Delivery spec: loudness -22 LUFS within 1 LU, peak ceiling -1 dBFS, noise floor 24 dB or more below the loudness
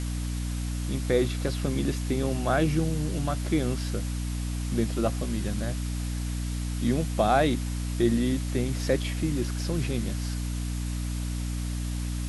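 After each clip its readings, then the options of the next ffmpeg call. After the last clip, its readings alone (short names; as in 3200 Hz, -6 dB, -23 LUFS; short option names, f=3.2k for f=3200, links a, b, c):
hum 60 Hz; harmonics up to 300 Hz; hum level -28 dBFS; noise floor -31 dBFS; noise floor target -53 dBFS; loudness -28.5 LUFS; peak -10.0 dBFS; loudness target -22.0 LUFS
-> -af "bandreject=f=60:t=h:w=6,bandreject=f=120:t=h:w=6,bandreject=f=180:t=h:w=6,bandreject=f=240:t=h:w=6,bandreject=f=300:t=h:w=6"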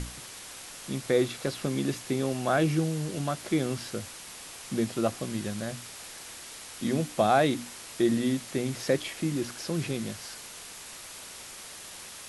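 hum none; noise floor -44 dBFS; noise floor target -54 dBFS
-> -af "afftdn=nr=10:nf=-44"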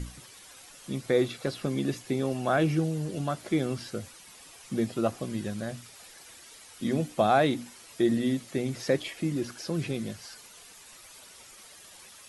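noise floor -51 dBFS; noise floor target -54 dBFS
-> -af "afftdn=nr=6:nf=-51"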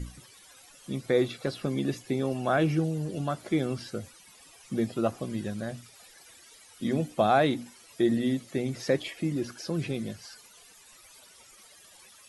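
noise floor -55 dBFS; loudness -29.5 LUFS; peak -10.5 dBFS; loudness target -22.0 LUFS
-> -af "volume=7.5dB"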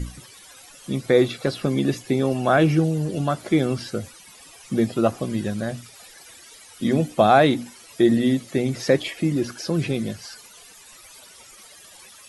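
loudness -22.0 LUFS; peak -3.0 dBFS; noise floor -47 dBFS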